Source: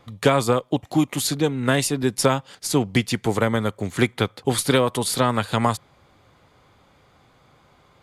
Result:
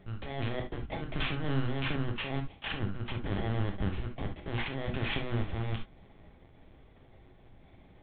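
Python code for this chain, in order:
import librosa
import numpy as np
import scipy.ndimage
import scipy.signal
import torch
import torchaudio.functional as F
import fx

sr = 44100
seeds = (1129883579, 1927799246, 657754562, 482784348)

y = fx.bit_reversed(x, sr, seeds[0], block=32)
y = fx.peak_eq(y, sr, hz=61.0, db=5.0, octaves=2.4)
y = fx.over_compress(y, sr, threshold_db=-25.0, ratio=-1.0)
y = fx.lpc_vocoder(y, sr, seeds[1], excitation='pitch_kept', order=10)
y = fx.air_absorb(y, sr, metres=89.0, at=(2.52, 3.26))
y = fx.rev_gated(y, sr, seeds[2], gate_ms=90, shape='flat', drr_db=3.0)
y = fx.band_squash(y, sr, depth_pct=40, at=(1.44, 1.96))
y = y * librosa.db_to_amplitude(-6.0)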